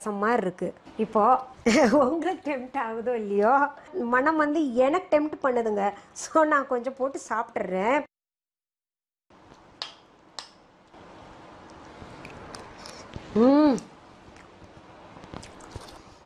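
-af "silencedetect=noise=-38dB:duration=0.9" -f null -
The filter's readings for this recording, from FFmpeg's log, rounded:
silence_start: 8.04
silence_end: 9.52 | silence_duration: 1.48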